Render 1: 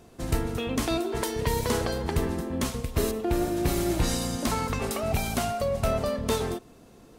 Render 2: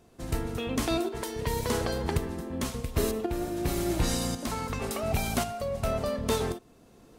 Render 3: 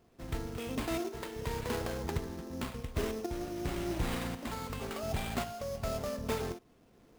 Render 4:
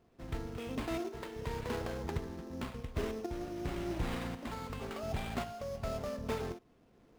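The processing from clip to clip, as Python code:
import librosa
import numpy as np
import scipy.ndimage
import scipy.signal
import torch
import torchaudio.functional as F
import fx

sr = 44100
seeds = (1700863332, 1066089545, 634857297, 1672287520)

y1 = fx.tremolo_shape(x, sr, shape='saw_up', hz=0.92, depth_pct=55)
y2 = fx.sample_hold(y1, sr, seeds[0], rate_hz=5800.0, jitter_pct=20)
y2 = F.gain(torch.from_numpy(y2), -6.5).numpy()
y3 = fx.high_shelf(y2, sr, hz=5800.0, db=-8.5)
y3 = F.gain(torch.from_numpy(y3), -2.0).numpy()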